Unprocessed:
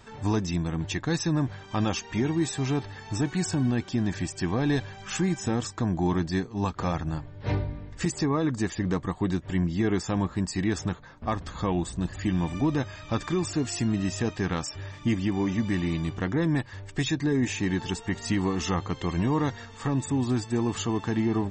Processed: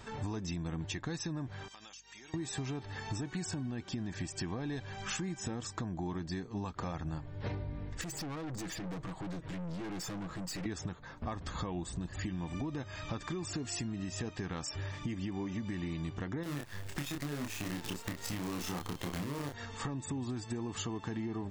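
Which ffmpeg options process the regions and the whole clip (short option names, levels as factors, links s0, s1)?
-filter_complex "[0:a]asettb=1/sr,asplit=3[s0][s1][s2];[s0]atrim=end=1.684[s3];[s1]atrim=start=1.68:end=2.34,asetpts=PTS-STARTPTS,afade=t=in:d=0.004:c=qsin,afade=t=out:st=0.656:d=0.004:c=qsin,aderivative,acompressor=threshold=0.00355:ratio=16:attack=3.2:release=140:knee=1:detection=peak,aeval=exprs='val(0)+0.000224*(sin(2*PI*50*n/s)+sin(2*PI*2*50*n/s)/2+sin(2*PI*3*50*n/s)/3+sin(2*PI*4*50*n/s)/4+sin(2*PI*5*50*n/s)/5)':c=same[s4];[s2]atrim=start=2.336[s5];[s3][s4]acrossfade=d=0.004:c1=hsin:c2=qsin[s6];[s6][s5]acrossfade=d=0.004:c1=qsin:c2=hsin,asettb=1/sr,asplit=3[s7][s8][s9];[s7]atrim=end=8.014[s10];[s8]atrim=start=8.01:end=10.66,asetpts=PTS-STARTPTS,afade=t=in:d=0.004:c=qsin,afade=t=out:st=2.646:d=0.004:c=qsin,aecho=1:1:6.2:0.59,atrim=end_sample=116865,acompressor=threshold=0.0447:ratio=6:attack=3.2:release=140:knee=1:detection=peak,aeval=exprs='(tanh(89.1*val(0)+0.35)-tanh(0.35))/89.1':c=same[s11];[s9]atrim=start=10.656[s12];[s10][s11]acrossfade=d=0.004:c1=hsin:c2=qsin[s13];[s13][s12]acrossfade=d=0.004:c1=qsin:c2=hsin,asettb=1/sr,asplit=3[s14][s15][s16];[s14]atrim=end=16.434[s17];[s15]atrim=start=16.43:end=19.54,asetpts=PTS-STARTPTS,afade=t=in:d=0.004:c=qsin,afade=t=out:st=3.106:d=0.004:c=qsin,acompressor=threshold=0.02:ratio=2:attack=3.2:release=140:knee=1:detection=peak,acrusher=bits=6:dc=4:mix=0:aa=0.000001,asplit=2[s18][s19];[s19]adelay=28,volume=0.668[s20];[s18][s20]amix=inputs=2:normalize=0,atrim=end_sample=137151[s21];[s16]atrim=start=19.536[s22];[s17][s21]acrossfade=d=0.004:c1=hsin:c2=qsin[s23];[s23][s22]acrossfade=d=0.004:c1=qsin:c2=hsin,alimiter=limit=0.0794:level=0:latency=1:release=178,acompressor=threshold=0.0158:ratio=6,volume=1.12"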